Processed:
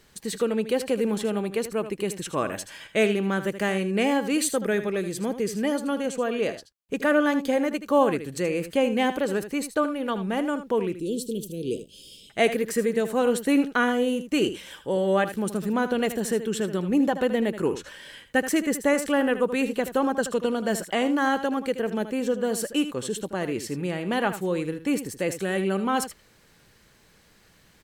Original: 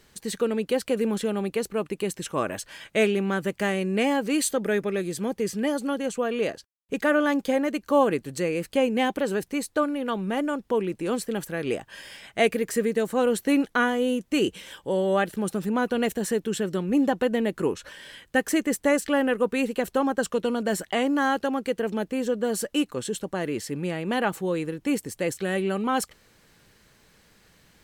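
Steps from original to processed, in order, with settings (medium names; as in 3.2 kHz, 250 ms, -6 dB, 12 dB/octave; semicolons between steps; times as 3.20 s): 10.93–12.30 s: elliptic band-stop 450–3200 Hz, stop band 40 dB; delay 78 ms -11.5 dB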